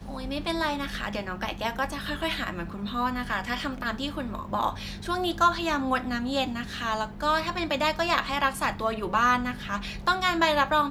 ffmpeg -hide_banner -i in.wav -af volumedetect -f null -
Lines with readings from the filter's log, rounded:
mean_volume: -27.9 dB
max_volume: -8.2 dB